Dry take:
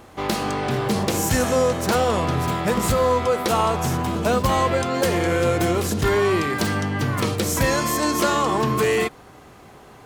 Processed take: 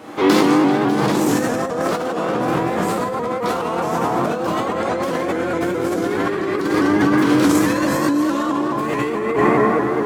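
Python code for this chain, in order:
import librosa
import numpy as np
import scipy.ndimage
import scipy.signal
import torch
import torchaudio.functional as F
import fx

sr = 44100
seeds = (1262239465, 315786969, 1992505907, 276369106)

y = scipy.signal.sosfilt(scipy.signal.butter(2, 180.0, 'highpass', fs=sr, output='sos'), x)
y = fx.high_shelf(y, sr, hz=5400.0, db=-6.0)
y = fx.rev_plate(y, sr, seeds[0], rt60_s=3.8, hf_ratio=0.35, predelay_ms=0, drr_db=-9.0)
y = fx.over_compress(y, sr, threshold_db=-19.0, ratio=-1.0)
y = fx.peak_eq(y, sr, hz=300.0, db=9.0, octaves=0.2)
y = fx.vibrato_shape(y, sr, shape='saw_up', rate_hz=4.7, depth_cents=100.0)
y = y * 10.0 ** (-1.5 / 20.0)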